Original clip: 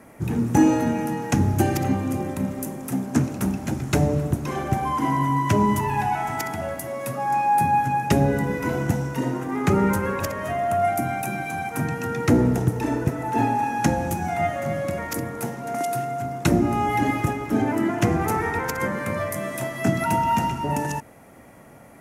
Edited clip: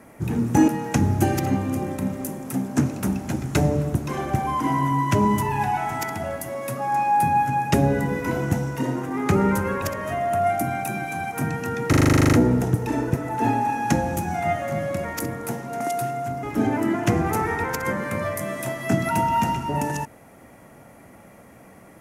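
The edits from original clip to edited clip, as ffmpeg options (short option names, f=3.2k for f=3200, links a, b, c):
-filter_complex "[0:a]asplit=14[a][b][c][d][e][f][g][h][i][j][k][l][m][n];[a]atrim=end=0.682[o];[b]atrim=start=1.058:end=12.312[p];[c]atrim=start=12.268:end=12.312[q];[d]atrim=start=12.268:end=12.312[r];[e]atrim=start=12.268:end=12.312[s];[f]atrim=start=12.268:end=12.312[t];[g]atrim=start=12.268:end=12.312[u];[h]atrim=start=12.268:end=12.312[v];[i]atrim=start=12.268:end=12.312[w];[j]atrim=start=12.268:end=12.312[x];[k]atrim=start=12.268:end=12.312[y];[l]atrim=start=12.268:end=12.312[z];[m]atrim=start=12.268:end=16.372[aa];[n]atrim=start=17.378[ab];[o][p]acrossfade=d=0.004:c1=hsin:c2=hsin[ac];[ac][q]acrossfade=d=0.004:c1=hsin:c2=hsin[ad];[ad][r]acrossfade=d=0.004:c1=hsin:c2=hsin[ae];[ae][s]acrossfade=d=0.004:c1=hsin:c2=hsin[af];[af][t]acrossfade=d=0.004:c1=hsin:c2=hsin[ag];[ag][u]acrossfade=d=0.004:c1=hsin:c2=hsin[ah];[ah][v]acrossfade=d=0.004:c1=hsin:c2=hsin[ai];[ai][w]acrossfade=d=0.004:c1=hsin:c2=hsin[aj];[aj][x]acrossfade=d=0.004:c1=hsin:c2=hsin[ak];[ak][y]acrossfade=d=0.004:c1=hsin:c2=hsin[al];[al][z]acrossfade=d=0.004:c1=hsin:c2=hsin[am];[am][aa]acrossfade=d=0.004:c1=hsin:c2=hsin[an];[an][ab]acrossfade=d=0.004:c1=hsin:c2=hsin"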